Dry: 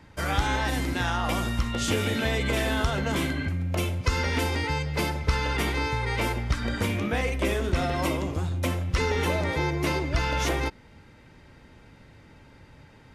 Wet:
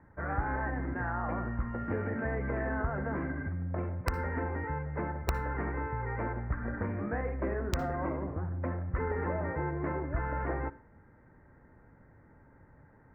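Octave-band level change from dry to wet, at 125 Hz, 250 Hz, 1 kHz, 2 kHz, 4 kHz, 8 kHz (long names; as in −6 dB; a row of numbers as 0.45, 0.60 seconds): −7.0, −6.5, −6.0, −9.5, −24.5, −21.0 decibels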